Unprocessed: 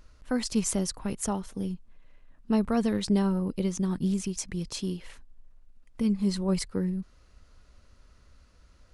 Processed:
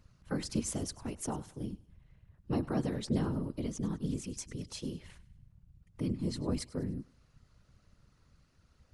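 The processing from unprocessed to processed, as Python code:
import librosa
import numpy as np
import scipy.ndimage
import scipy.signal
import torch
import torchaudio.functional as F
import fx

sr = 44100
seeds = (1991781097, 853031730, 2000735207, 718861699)

p1 = fx.whisperise(x, sr, seeds[0])
p2 = p1 + fx.echo_thinned(p1, sr, ms=100, feedback_pct=46, hz=430.0, wet_db=-19.0, dry=0)
y = p2 * 10.0 ** (-7.5 / 20.0)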